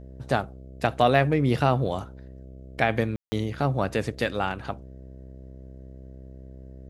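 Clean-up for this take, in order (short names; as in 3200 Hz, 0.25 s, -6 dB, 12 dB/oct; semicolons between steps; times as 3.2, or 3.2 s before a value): de-hum 65.1 Hz, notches 10; room tone fill 3.16–3.32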